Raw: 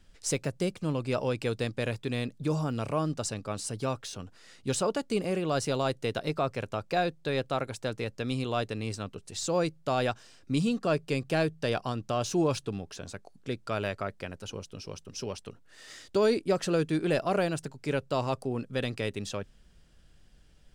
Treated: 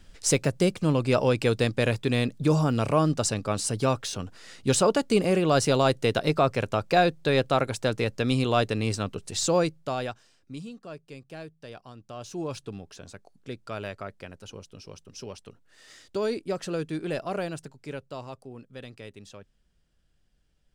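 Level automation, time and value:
0:09.44 +7 dB
0:10.06 −4 dB
0:10.76 −14 dB
0:11.88 −14 dB
0:12.68 −3.5 dB
0:17.54 −3.5 dB
0:18.39 −11 dB

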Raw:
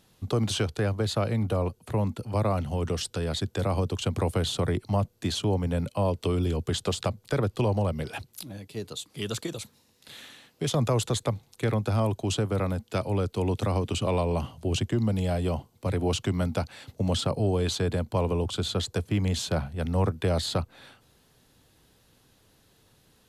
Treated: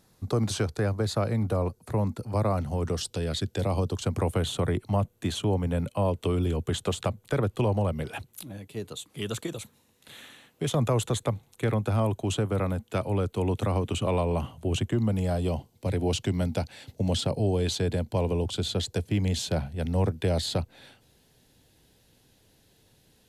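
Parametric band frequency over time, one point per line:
parametric band −9 dB 0.52 octaves
0:02.91 3,000 Hz
0:03.36 770 Hz
0:04.31 4,900 Hz
0:15.13 4,900 Hz
0:15.54 1,200 Hz

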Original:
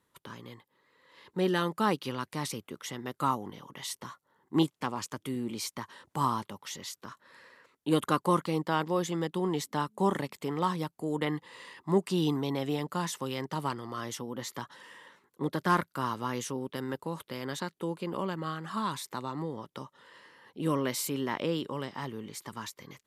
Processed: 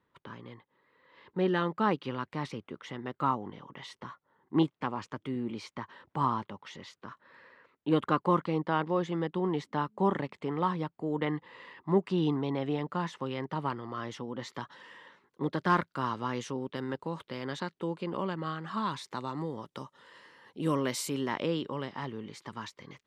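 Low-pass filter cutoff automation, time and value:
0:13.75 2,700 Hz
0:14.70 4,500 Hz
0:18.94 4,500 Hz
0:19.43 9,100 Hz
0:21.14 9,100 Hz
0:21.61 4,300 Hz

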